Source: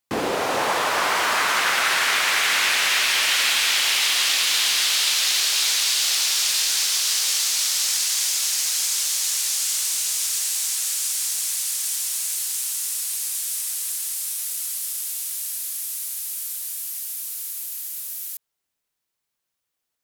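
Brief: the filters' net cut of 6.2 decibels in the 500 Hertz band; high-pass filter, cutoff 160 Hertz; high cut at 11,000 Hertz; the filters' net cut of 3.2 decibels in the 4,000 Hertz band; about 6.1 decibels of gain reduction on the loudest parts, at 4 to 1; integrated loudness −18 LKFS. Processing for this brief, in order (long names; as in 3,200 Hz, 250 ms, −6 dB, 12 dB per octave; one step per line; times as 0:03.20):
high-pass filter 160 Hz
low-pass filter 11,000 Hz
parametric band 500 Hz −8 dB
parametric band 4,000 Hz −4 dB
downward compressor 4 to 1, threshold −26 dBFS
level +9 dB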